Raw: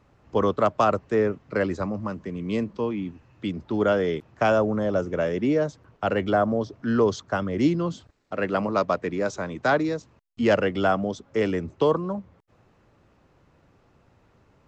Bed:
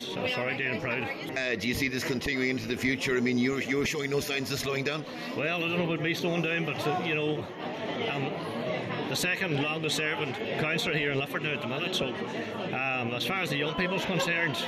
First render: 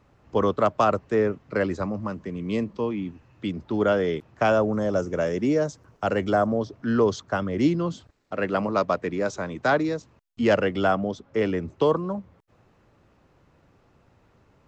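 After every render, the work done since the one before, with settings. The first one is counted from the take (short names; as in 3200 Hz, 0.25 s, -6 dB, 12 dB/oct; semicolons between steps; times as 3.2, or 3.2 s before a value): 2.53–2.93 notch 1500 Hz; 4.73–6.47 resonant high shelf 4600 Hz +6 dB, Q 1.5; 10.95–11.62 air absorption 72 m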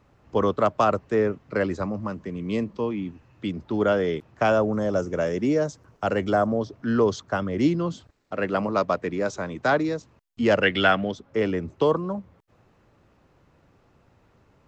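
10.63–11.12 band shelf 2500 Hz +12 dB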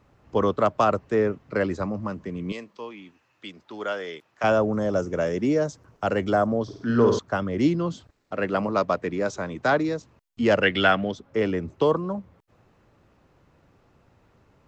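2.52–4.44 HPF 1400 Hz 6 dB/oct; 6.63–7.19 flutter echo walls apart 8.7 m, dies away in 0.61 s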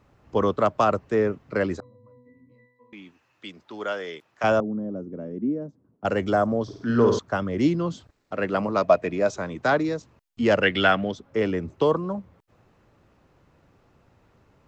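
1.8–2.93 octave resonator B, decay 0.79 s; 4.6–6.05 band-pass 240 Hz, Q 2.3; 8.82–9.34 small resonant body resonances 650/2500 Hz, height 14 dB -> 11 dB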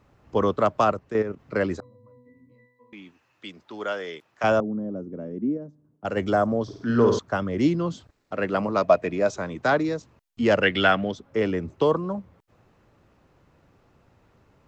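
0.92–1.39 level quantiser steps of 10 dB; 5.57–6.17 resonator 150 Hz, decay 0.98 s, mix 40%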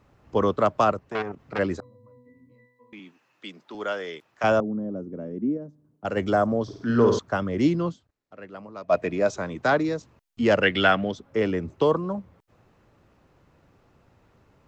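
1.04–1.59 core saturation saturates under 1700 Hz; 2.99–3.75 HPF 140 Hz 24 dB/oct; 7.89–8.94 dip -16 dB, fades 0.34 s exponential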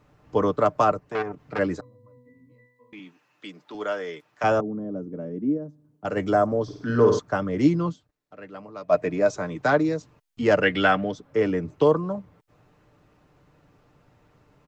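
dynamic EQ 3300 Hz, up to -5 dB, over -45 dBFS, Q 1.5; comb 6.7 ms, depth 41%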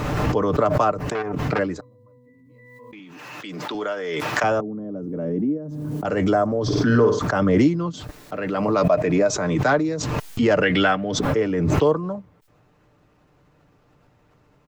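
backwards sustainer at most 23 dB/s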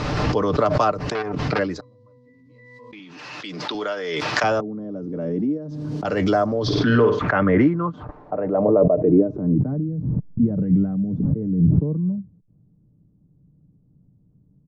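low-pass sweep 4900 Hz -> 190 Hz, 6.52–9.78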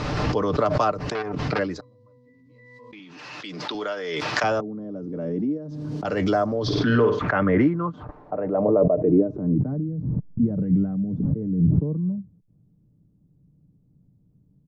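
gain -2.5 dB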